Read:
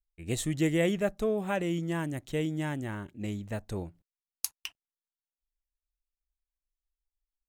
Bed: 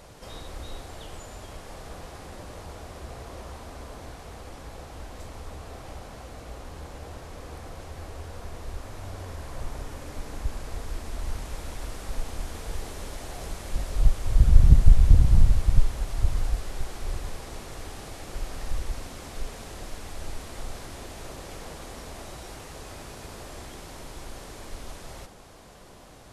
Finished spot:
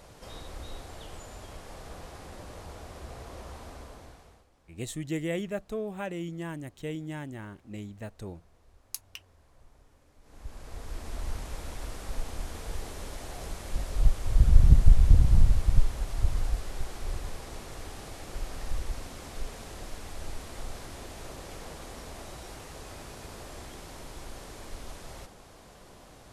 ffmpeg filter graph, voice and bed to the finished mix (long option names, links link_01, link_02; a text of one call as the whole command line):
ffmpeg -i stem1.wav -i stem2.wav -filter_complex "[0:a]adelay=4500,volume=-5dB[link_01];[1:a]volume=18dB,afade=type=out:start_time=3.68:duration=0.79:silence=0.0944061,afade=type=in:start_time=10.21:duration=0.92:silence=0.0891251[link_02];[link_01][link_02]amix=inputs=2:normalize=0" out.wav